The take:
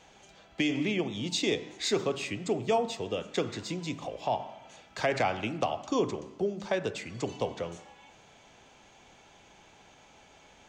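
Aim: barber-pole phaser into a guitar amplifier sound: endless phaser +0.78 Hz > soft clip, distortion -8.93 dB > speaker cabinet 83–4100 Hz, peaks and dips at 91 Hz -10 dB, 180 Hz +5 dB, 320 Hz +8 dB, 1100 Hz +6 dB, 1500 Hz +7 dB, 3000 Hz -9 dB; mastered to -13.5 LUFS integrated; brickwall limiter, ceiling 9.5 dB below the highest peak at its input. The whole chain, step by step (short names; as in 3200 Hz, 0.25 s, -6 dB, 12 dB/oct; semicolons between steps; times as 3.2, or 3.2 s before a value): limiter -26 dBFS; endless phaser +0.78 Hz; soft clip -39 dBFS; speaker cabinet 83–4100 Hz, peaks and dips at 91 Hz -10 dB, 180 Hz +5 dB, 320 Hz +8 dB, 1100 Hz +6 dB, 1500 Hz +7 dB, 3000 Hz -9 dB; gain +28 dB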